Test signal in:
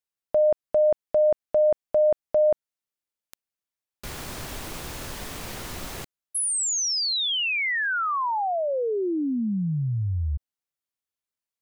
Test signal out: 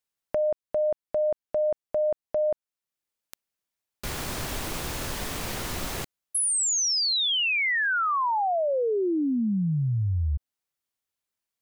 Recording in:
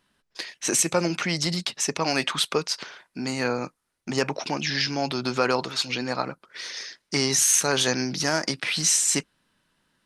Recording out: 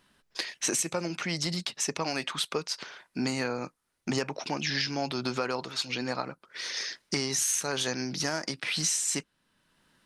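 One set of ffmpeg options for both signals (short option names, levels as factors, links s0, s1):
-af "acompressor=threshold=0.0501:ratio=6:attack=3.5:release=953:knee=1:detection=rms,volume=1.5"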